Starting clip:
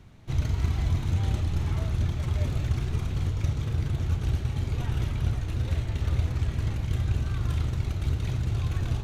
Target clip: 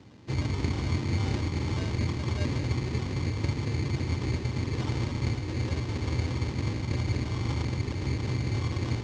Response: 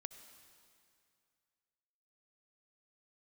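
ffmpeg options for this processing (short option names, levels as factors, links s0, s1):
-af "acrusher=samples=20:mix=1:aa=0.000001,highpass=140,equalizer=f=160:t=q:w=4:g=-6,equalizer=f=290:t=q:w=4:g=4,equalizer=f=680:t=q:w=4:g=-9,equalizer=f=1400:t=q:w=4:g=-7,equalizer=f=2300:t=q:w=4:g=-3,lowpass=f=6300:w=0.5412,lowpass=f=6300:w=1.3066,volume=1.88"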